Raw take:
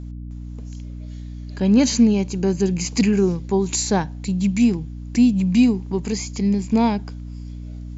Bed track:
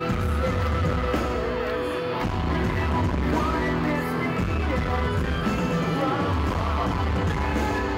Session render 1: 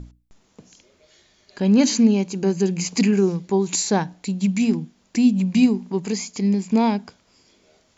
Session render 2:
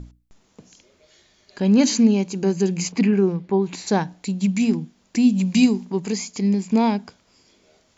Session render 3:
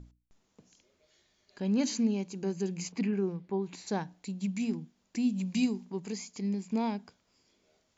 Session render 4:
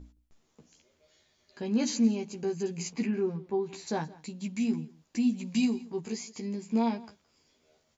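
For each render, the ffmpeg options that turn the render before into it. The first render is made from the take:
-af "bandreject=f=60:t=h:w=6,bandreject=f=120:t=h:w=6,bandreject=f=180:t=h:w=6,bandreject=f=240:t=h:w=6,bandreject=f=300:t=h:w=6"
-filter_complex "[0:a]asplit=3[s0][s1][s2];[s0]afade=t=out:st=2.91:d=0.02[s3];[s1]lowpass=2700,afade=t=in:st=2.91:d=0.02,afade=t=out:st=3.86:d=0.02[s4];[s2]afade=t=in:st=3.86:d=0.02[s5];[s3][s4][s5]amix=inputs=3:normalize=0,asettb=1/sr,asplit=3[s6][s7][s8];[s6]atrim=end=5.304[s9];[s7]atrim=start=5.3:end=5.85,asetpts=PTS-STARTPTS,afade=t=in:d=0.004:c=qsin,afade=t=out:st=0.546:d=0.004:c=qsin,highshelf=f=3400:g=9[s10];[s8]atrim=start=5.846[s11];[s9][s10]acrossfade=d=0.004:c1=hsin:c2=qsin[s12];[s12][s11]acrossfade=d=0.004:c1=qsin:c2=hsin"
-af "volume=0.237"
-filter_complex "[0:a]asplit=2[s0][s1];[s1]adelay=13,volume=0.668[s2];[s0][s2]amix=inputs=2:normalize=0,aecho=1:1:169:0.0891"

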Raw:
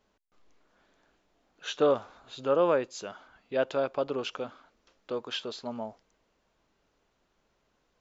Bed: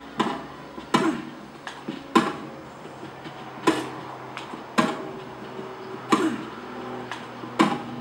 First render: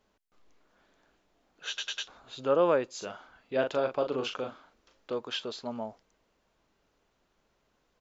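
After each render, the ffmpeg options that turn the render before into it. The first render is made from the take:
-filter_complex "[0:a]asplit=3[s0][s1][s2];[s0]afade=t=out:st=3:d=0.02[s3];[s1]asplit=2[s4][s5];[s5]adelay=39,volume=0.473[s6];[s4][s6]amix=inputs=2:normalize=0,afade=t=in:st=3:d=0.02,afade=t=out:st=5.13:d=0.02[s7];[s2]afade=t=in:st=5.13:d=0.02[s8];[s3][s7][s8]amix=inputs=3:normalize=0,asplit=5[s9][s10][s11][s12][s13];[s9]atrim=end=1.782[s14];[s10]atrim=start=1.678:end=1.782[s15];[s11]atrim=start=1.678:end=1.782[s16];[s12]atrim=start=1.678:end=1.782[s17];[s13]atrim=start=2.078[s18];[s14][s15]acrossfade=d=0.004:c1=hsin:c2=hsin[s19];[s19][s16]acrossfade=d=0.004:c1=hsin:c2=hsin[s20];[s20][s17]acrossfade=d=0.004:c1=hsin:c2=hsin[s21];[s21][s18]acrossfade=d=0.004:c1=hsin:c2=hsin"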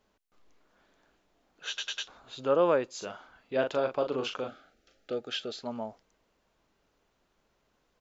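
-filter_complex "[0:a]asettb=1/sr,asplit=3[s0][s1][s2];[s0]atrim=end=4.484[s3];[s1]atrim=start=4.48:end=5.63,asetpts=PTS-STARTPTS,afade=t=in:d=0.004:c=qsin,afade=t=out:st=1.146:d=0.004:c=qsin,asuperstop=centerf=1000:order=8:qfactor=2.7[s4];[s2]atrim=start=5.626[s5];[s3][s4]acrossfade=d=0.004:c1=hsin:c2=qsin[s6];[s6][s5]acrossfade=d=0.004:c1=qsin:c2=hsin"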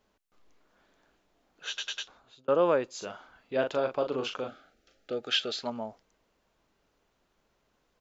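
-filter_complex "[0:a]asettb=1/sr,asplit=3[s0][s1][s2];[s0]atrim=end=5.234[s3];[s1]atrim=start=5.23:end=5.7,asetpts=PTS-STARTPTS,afade=t=in:d=0.004:c=qsin,afade=t=out:st=0.466:d=0.004:c=qsin,equalizer=f=2700:w=0.3:g=8[s4];[s2]atrim=start=5.696[s5];[s3][s4]acrossfade=d=0.004:c1=hsin:c2=qsin[s6];[s6][s5]acrossfade=d=0.004:c1=qsin:c2=hsin,asplit=2[s7][s8];[s7]atrim=end=2.48,asetpts=PTS-STARTPTS,afade=t=out:st=1.94:d=0.54[s9];[s8]atrim=start=2.48,asetpts=PTS-STARTPTS,afade=t=in:d=0.004:c=hsin[s10];[s9][s10]concat=n=2:v=0:a=1"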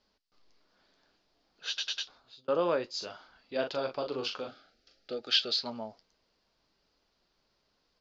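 -af "lowpass=f=4800:t=q:w=5.3,flanger=delay=3.2:depth=9.1:regen=-59:speed=0.57:shape=triangular"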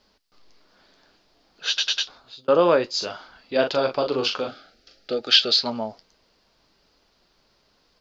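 -af "volume=3.55,alimiter=limit=0.708:level=0:latency=1"

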